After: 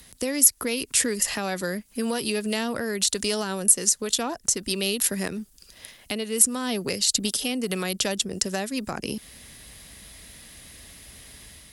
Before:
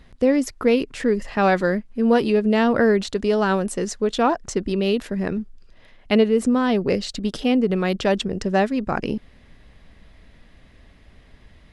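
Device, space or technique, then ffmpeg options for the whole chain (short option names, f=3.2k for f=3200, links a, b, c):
FM broadcast chain: -filter_complex "[0:a]highpass=47,dynaudnorm=f=130:g=5:m=4.5dB,acrossover=split=220|740[a][b][c];[a]acompressor=threshold=-32dB:ratio=4[d];[b]acompressor=threshold=-27dB:ratio=4[e];[c]acompressor=threshold=-31dB:ratio=4[f];[d][e][f]amix=inputs=3:normalize=0,aemphasis=mode=production:type=75fm,alimiter=limit=-15dB:level=0:latency=1:release=305,asoftclip=type=hard:threshold=-15.5dB,lowpass=f=15k:w=0.5412,lowpass=f=15k:w=1.3066,aemphasis=mode=production:type=75fm,volume=-2dB"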